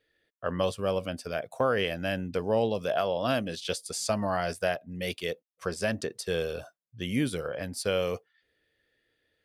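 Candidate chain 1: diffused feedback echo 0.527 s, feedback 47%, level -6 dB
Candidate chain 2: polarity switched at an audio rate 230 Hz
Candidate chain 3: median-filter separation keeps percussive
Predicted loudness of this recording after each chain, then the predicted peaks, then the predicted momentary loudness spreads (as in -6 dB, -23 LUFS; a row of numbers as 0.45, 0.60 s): -30.0, -30.5, -35.0 LUFS; -14.0, -14.5, -15.5 dBFS; 8, 9, 8 LU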